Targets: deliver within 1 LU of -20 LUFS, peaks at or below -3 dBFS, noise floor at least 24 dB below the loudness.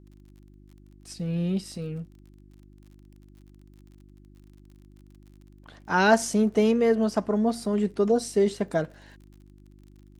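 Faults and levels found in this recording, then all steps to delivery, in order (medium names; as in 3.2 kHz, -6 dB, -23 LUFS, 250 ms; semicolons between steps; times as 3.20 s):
tick rate 39 per s; hum 50 Hz; highest harmonic 350 Hz; hum level -49 dBFS; loudness -25.0 LUFS; peak level -6.5 dBFS; loudness target -20.0 LUFS
-> de-click; de-hum 50 Hz, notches 7; trim +5 dB; peak limiter -3 dBFS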